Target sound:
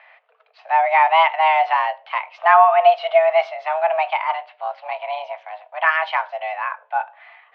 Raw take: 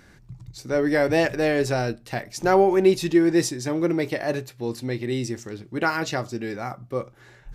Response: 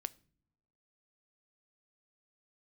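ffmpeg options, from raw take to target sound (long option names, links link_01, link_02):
-filter_complex "[0:a]asplit=3[link_01][link_02][link_03];[link_01]afade=type=out:start_time=4.21:duration=0.02[link_04];[link_02]tremolo=f=290:d=0.571,afade=type=in:start_time=4.21:duration=0.02,afade=type=out:start_time=5.86:duration=0.02[link_05];[link_03]afade=type=in:start_time=5.86:duration=0.02[link_06];[link_04][link_05][link_06]amix=inputs=3:normalize=0,asplit=2[link_07][link_08];[1:a]atrim=start_sample=2205[link_09];[link_08][link_09]afir=irnorm=-1:irlink=0,volume=7.5dB[link_10];[link_07][link_10]amix=inputs=2:normalize=0,highpass=frequency=360:width_type=q:width=0.5412,highpass=frequency=360:width_type=q:width=1.307,lowpass=frequency=2900:width_type=q:width=0.5176,lowpass=frequency=2900:width_type=q:width=0.7071,lowpass=frequency=2900:width_type=q:width=1.932,afreqshift=320,volume=-2dB"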